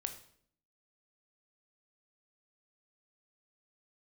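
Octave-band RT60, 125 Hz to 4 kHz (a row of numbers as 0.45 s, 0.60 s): 0.80 s, 0.85 s, 0.70 s, 0.55 s, 0.55 s, 0.50 s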